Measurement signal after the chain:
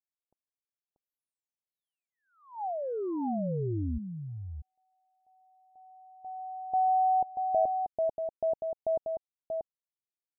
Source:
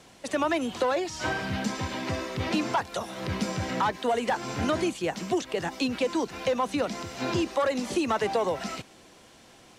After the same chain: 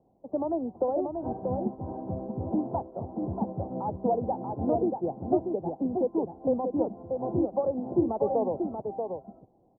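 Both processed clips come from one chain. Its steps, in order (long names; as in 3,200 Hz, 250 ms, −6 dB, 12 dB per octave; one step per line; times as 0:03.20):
elliptic low-pass filter 820 Hz, stop band 60 dB
single-tap delay 635 ms −3.5 dB
expander for the loud parts 1.5 to 1, over −45 dBFS
level +2 dB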